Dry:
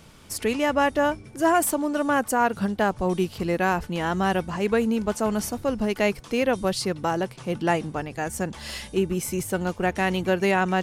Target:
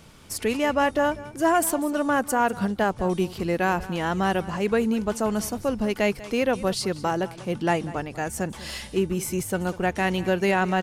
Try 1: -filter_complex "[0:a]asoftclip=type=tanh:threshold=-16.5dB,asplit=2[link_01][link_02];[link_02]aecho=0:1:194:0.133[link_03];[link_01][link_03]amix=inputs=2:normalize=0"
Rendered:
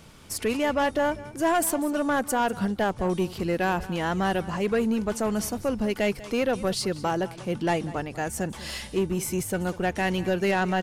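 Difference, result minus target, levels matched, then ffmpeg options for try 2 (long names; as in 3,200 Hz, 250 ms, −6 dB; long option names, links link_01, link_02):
soft clipping: distortion +14 dB
-filter_complex "[0:a]asoftclip=type=tanh:threshold=-7dB,asplit=2[link_01][link_02];[link_02]aecho=0:1:194:0.133[link_03];[link_01][link_03]amix=inputs=2:normalize=0"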